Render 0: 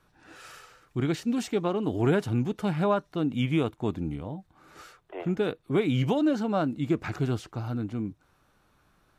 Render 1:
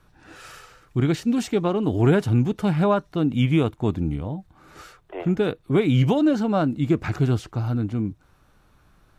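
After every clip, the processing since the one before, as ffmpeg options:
-af "lowshelf=f=120:g=9,volume=1.58"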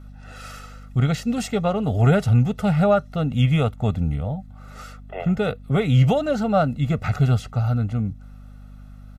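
-af "aecho=1:1:1.5:0.89,aeval=exprs='val(0)+0.01*(sin(2*PI*50*n/s)+sin(2*PI*2*50*n/s)/2+sin(2*PI*3*50*n/s)/3+sin(2*PI*4*50*n/s)/4+sin(2*PI*5*50*n/s)/5)':c=same"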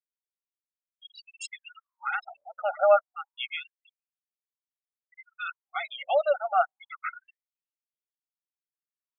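-af "afftfilt=real='re*gte(hypot(re,im),0.0631)':imag='im*gte(hypot(re,im),0.0631)':win_size=1024:overlap=0.75,bandreject=f=910:w=12,afftfilt=real='re*gte(b*sr/1024,530*pow(3200/530,0.5+0.5*sin(2*PI*0.28*pts/sr)))':imag='im*gte(b*sr/1024,530*pow(3200/530,0.5+0.5*sin(2*PI*0.28*pts/sr)))':win_size=1024:overlap=0.75"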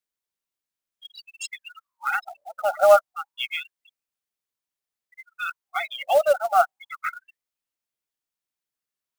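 -af "acrusher=bits=5:mode=log:mix=0:aa=0.000001,volume=1.78"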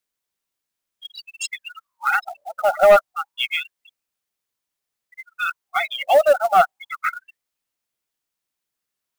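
-af "asoftclip=type=tanh:threshold=0.266,volume=2"

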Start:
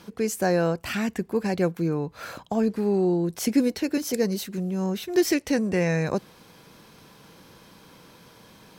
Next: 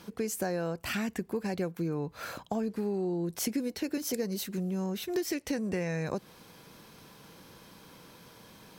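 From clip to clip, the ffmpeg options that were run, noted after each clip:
-af "highshelf=f=11000:g=5,acompressor=threshold=0.0501:ratio=6,volume=0.75"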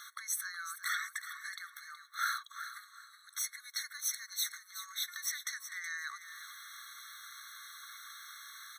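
-filter_complex "[0:a]alimiter=level_in=1.88:limit=0.0631:level=0:latency=1:release=248,volume=0.531,asplit=2[s0][s1];[s1]aecho=0:1:372|744|1116:0.282|0.0761|0.0205[s2];[s0][s2]amix=inputs=2:normalize=0,afftfilt=real='re*eq(mod(floor(b*sr/1024/1100),2),1)':imag='im*eq(mod(floor(b*sr/1024/1100),2),1)':win_size=1024:overlap=0.75,volume=2.99"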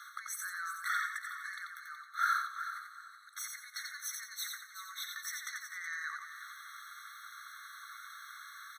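-af "highpass=f=1300:t=q:w=3.4,aecho=1:1:88|176|264|352:0.596|0.179|0.0536|0.0161,volume=0.473"

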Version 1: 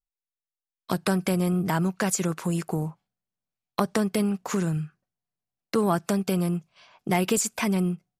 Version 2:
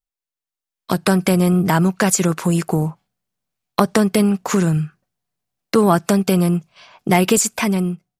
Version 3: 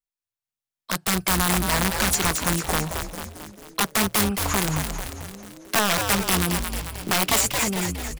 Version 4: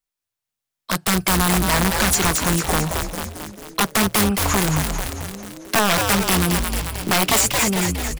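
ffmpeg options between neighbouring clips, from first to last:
-af "dynaudnorm=f=230:g=7:m=2.51,volume=1.26"
-filter_complex "[0:a]aeval=exprs='(mod(2.82*val(0)+1,2)-1)/2.82':c=same,lowshelf=f=430:g=-7,asplit=2[s0][s1];[s1]asplit=7[s2][s3][s4][s5][s6][s7][s8];[s2]adelay=222,afreqshift=-120,volume=0.531[s9];[s3]adelay=444,afreqshift=-240,volume=0.299[s10];[s4]adelay=666,afreqshift=-360,volume=0.166[s11];[s5]adelay=888,afreqshift=-480,volume=0.0933[s12];[s6]adelay=1110,afreqshift=-600,volume=0.0525[s13];[s7]adelay=1332,afreqshift=-720,volume=0.0292[s14];[s8]adelay=1554,afreqshift=-840,volume=0.0164[s15];[s9][s10][s11][s12][s13][s14][s15]amix=inputs=7:normalize=0[s16];[s0][s16]amix=inputs=2:normalize=0,volume=0.631"
-af "asoftclip=type=tanh:threshold=0.133,volume=2.11"

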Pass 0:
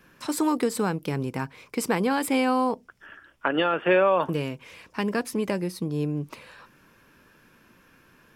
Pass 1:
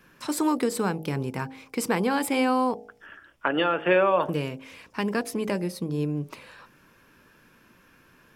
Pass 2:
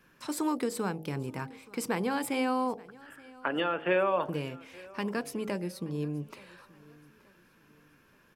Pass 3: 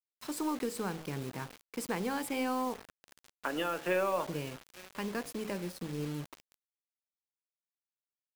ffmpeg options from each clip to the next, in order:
-af "bandreject=f=53.04:t=h:w=4,bandreject=f=106.08:t=h:w=4,bandreject=f=159.12:t=h:w=4,bandreject=f=212.16:t=h:w=4,bandreject=f=265.2:t=h:w=4,bandreject=f=318.24:t=h:w=4,bandreject=f=371.28:t=h:w=4,bandreject=f=424.32:t=h:w=4,bandreject=f=477.36:t=h:w=4,bandreject=f=530.4:t=h:w=4,bandreject=f=583.44:t=h:w=4,bandreject=f=636.48:t=h:w=4,bandreject=f=689.52:t=h:w=4,bandreject=f=742.56:t=h:w=4,bandreject=f=795.6:t=h:w=4,bandreject=f=848.64:t=h:w=4"
-af "aecho=1:1:876|1752|2628:0.075|0.0277|0.0103,volume=0.501"
-af "aeval=exprs='0.178*(cos(1*acos(clip(val(0)/0.178,-1,1)))-cos(1*PI/2))+0.00282*(cos(6*acos(clip(val(0)/0.178,-1,1)))-cos(6*PI/2))':c=same,acrusher=bits=6:mix=0:aa=0.000001,volume=0.631"

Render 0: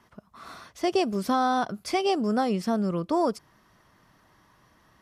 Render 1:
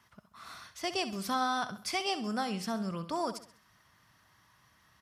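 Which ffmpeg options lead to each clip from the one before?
-filter_complex "[0:a]highpass=74,equalizer=f=370:w=0.5:g=-13,asplit=2[s0][s1];[s1]aecho=0:1:66|132|198|264:0.237|0.0949|0.0379|0.0152[s2];[s0][s2]amix=inputs=2:normalize=0"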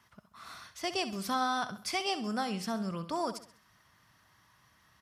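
-af anull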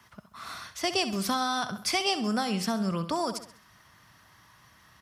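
-filter_complex "[0:a]acrossover=split=170|3000[s0][s1][s2];[s1]acompressor=threshold=0.0224:ratio=6[s3];[s0][s3][s2]amix=inputs=3:normalize=0,volume=2.37"

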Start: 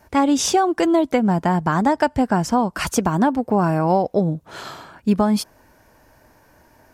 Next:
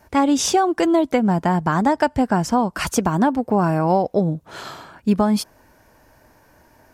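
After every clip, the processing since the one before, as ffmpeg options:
-af anull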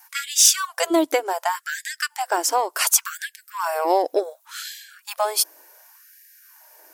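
-af "aeval=exprs='0.562*(cos(1*acos(clip(val(0)/0.562,-1,1)))-cos(1*PI/2))+0.01*(cos(7*acos(clip(val(0)/0.562,-1,1)))-cos(7*PI/2))':c=same,aemphasis=mode=production:type=75fm,afftfilt=real='re*gte(b*sr/1024,260*pow(1600/260,0.5+0.5*sin(2*PI*0.68*pts/sr)))':imag='im*gte(b*sr/1024,260*pow(1600/260,0.5+0.5*sin(2*PI*0.68*pts/sr)))':win_size=1024:overlap=0.75"

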